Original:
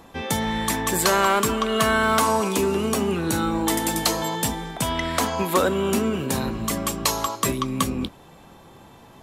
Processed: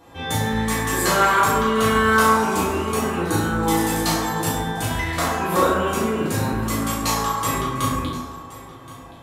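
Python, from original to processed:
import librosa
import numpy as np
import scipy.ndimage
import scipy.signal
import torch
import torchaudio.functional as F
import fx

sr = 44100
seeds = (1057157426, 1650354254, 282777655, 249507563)

p1 = fx.doubler(x, sr, ms=37.0, db=-4)
p2 = p1 + fx.echo_single(p1, sr, ms=1073, db=-18.5, dry=0)
p3 = fx.rev_fdn(p2, sr, rt60_s=1.7, lf_ratio=0.7, hf_ratio=0.35, size_ms=58.0, drr_db=-9.5)
y = F.gain(torch.from_numpy(p3), -8.0).numpy()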